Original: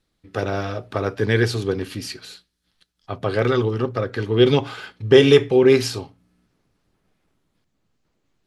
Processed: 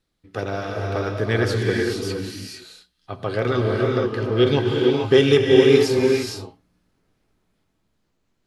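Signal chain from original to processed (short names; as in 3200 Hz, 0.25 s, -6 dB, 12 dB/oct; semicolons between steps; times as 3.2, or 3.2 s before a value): non-linear reverb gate 0.49 s rising, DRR 0 dB; gain -3 dB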